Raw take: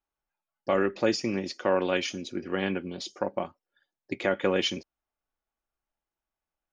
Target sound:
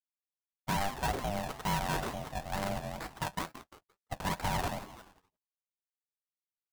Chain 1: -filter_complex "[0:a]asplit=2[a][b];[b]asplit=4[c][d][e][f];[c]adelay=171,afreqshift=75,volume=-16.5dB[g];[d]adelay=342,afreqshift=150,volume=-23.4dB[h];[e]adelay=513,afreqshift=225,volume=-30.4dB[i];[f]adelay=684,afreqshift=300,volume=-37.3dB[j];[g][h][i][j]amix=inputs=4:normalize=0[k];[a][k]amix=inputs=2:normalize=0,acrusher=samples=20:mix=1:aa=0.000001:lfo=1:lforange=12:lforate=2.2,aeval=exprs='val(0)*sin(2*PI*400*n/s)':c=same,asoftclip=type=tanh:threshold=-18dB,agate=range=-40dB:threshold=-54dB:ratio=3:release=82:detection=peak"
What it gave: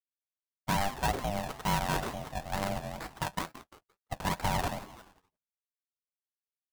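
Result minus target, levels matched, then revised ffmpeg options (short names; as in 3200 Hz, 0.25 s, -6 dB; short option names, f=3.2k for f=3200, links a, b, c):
soft clip: distortion -7 dB
-filter_complex "[0:a]asplit=2[a][b];[b]asplit=4[c][d][e][f];[c]adelay=171,afreqshift=75,volume=-16.5dB[g];[d]adelay=342,afreqshift=150,volume=-23.4dB[h];[e]adelay=513,afreqshift=225,volume=-30.4dB[i];[f]adelay=684,afreqshift=300,volume=-37.3dB[j];[g][h][i][j]amix=inputs=4:normalize=0[k];[a][k]amix=inputs=2:normalize=0,acrusher=samples=20:mix=1:aa=0.000001:lfo=1:lforange=12:lforate=2.2,aeval=exprs='val(0)*sin(2*PI*400*n/s)':c=same,asoftclip=type=tanh:threshold=-24.5dB,agate=range=-40dB:threshold=-54dB:ratio=3:release=82:detection=peak"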